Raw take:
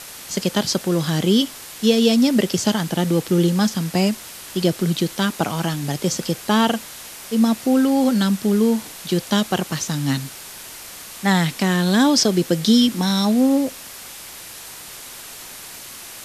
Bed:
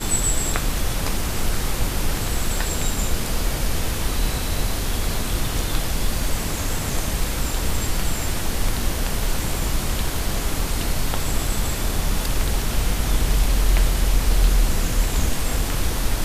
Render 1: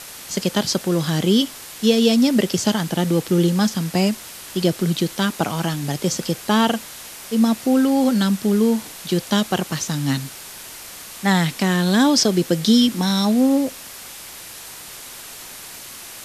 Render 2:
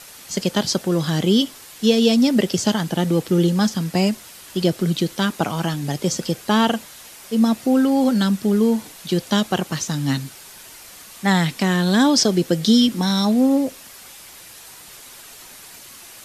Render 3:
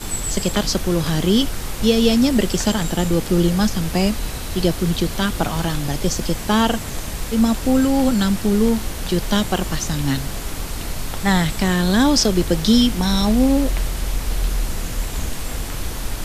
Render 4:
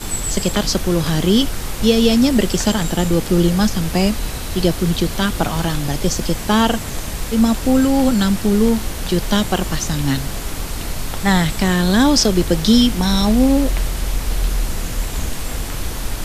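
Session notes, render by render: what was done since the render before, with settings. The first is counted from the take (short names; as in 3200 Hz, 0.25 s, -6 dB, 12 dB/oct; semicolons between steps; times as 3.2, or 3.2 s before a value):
nothing audible
denoiser 6 dB, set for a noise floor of -38 dBFS
add bed -4 dB
gain +2 dB; limiter -1 dBFS, peak gain reduction 1 dB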